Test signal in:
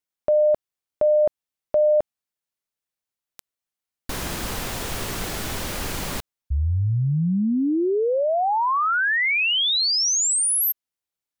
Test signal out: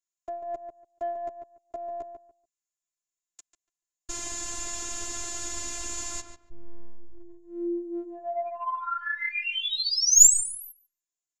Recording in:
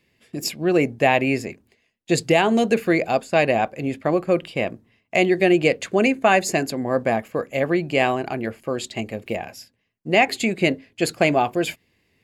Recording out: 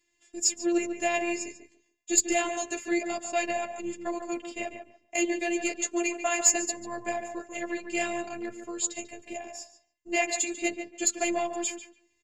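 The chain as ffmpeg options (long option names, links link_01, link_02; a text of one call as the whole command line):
ffmpeg -i in.wav -filter_complex "[0:a]lowpass=frequency=7000:width_type=q:width=11,aeval=exprs='1.41*(cos(1*acos(clip(val(0)/1.41,-1,1)))-cos(1*PI/2))+0.126*(cos(2*acos(clip(val(0)/1.41,-1,1)))-cos(2*PI/2))+0.0178*(cos(7*acos(clip(val(0)/1.41,-1,1)))-cos(7*PI/2))+0.0126*(cos(8*acos(clip(val(0)/1.41,-1,1)))-cos(8*PI/2))':channel_layout=same,flanger=delay=6.8:depth=5.8:regen=3:speed=0.26:shape=sinusoidal,acrossover=split=450|1100[link_01][link_02][link_03];[link_02]asoftclip=type=tanh:threshold=-20dB[link_04];[link_01][link_04][link_03]amix=inputs=3:normalize=0,afftfilt=real='hypot(re,im)*cos(PI*b)':imag='0':win_size=512:overlap=0.75,asplit=2[link_05][link_06];[link_06]adelay=144,lowpass=frequency=2300:poles=1,volume=-7.5dB,asplit=2[link_07][link_08];[link_08]adelay=144,lowpass=frequency=2300:poles=1,volume=0.2,asplit=2[link_09][link_10];[link_10]adelay=144,lowpass=frequency=2300:poles=1,volume=0.2[link_11];[link_07][link_09][link_11]amix=inputs=3:normalize=0[link_12];[link_05][link_12]amix=inputs=2:normalize=0,volume=-3.5dB" out.wav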